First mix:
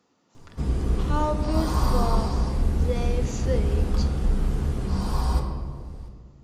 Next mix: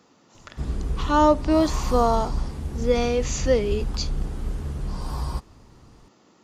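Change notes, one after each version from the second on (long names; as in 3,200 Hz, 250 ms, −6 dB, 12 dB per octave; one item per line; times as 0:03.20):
speech +10.5 dB
reverb: off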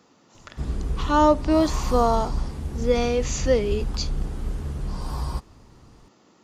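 nothing changed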